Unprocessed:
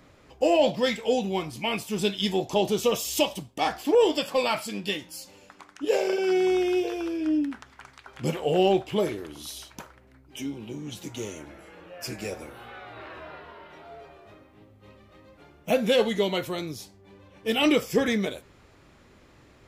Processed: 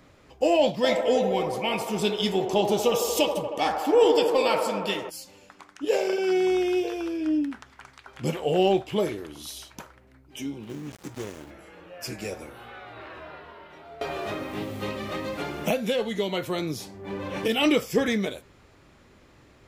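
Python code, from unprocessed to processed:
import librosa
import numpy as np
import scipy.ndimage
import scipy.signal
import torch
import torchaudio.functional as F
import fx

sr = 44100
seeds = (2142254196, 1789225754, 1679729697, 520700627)

y = fx.echo_wet_bandpass(x, sr, ms=78, feedback_pct=79, hz=740.0, wet_db=-4.5, at=(0.83, 5.09), fade=0.02)
y = fx.dead_time(y, sr, dead_ms=0.25, at=(10.63, 11.51))
y = fx.band_squash(y, sr, depth_pct=100, at=(14.01, 17.48))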